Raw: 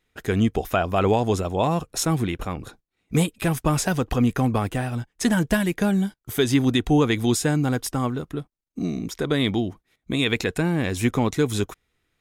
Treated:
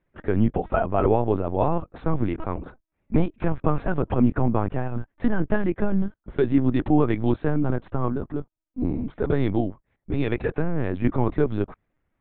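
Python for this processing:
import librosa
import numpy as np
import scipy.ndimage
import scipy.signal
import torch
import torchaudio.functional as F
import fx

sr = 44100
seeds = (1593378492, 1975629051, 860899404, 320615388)

p1 = fx.lpc_vocoder(x, sr, seeds[0], excitation='pitch_kept', order=10)
p2 = scipy.signal.sosfilt(scipy.signal.butter(2, 1300.0, 'lowpass', fs=sr, output='sos'), p1)
p3 = fx.rider(p2, sr, range_db=10, speed_s=2.0)
p4 = p2 + (p3 * 10.0 ** (-1.0 / 20.0))
y = p4 * 10.0 ** (-5.0 / 20.0)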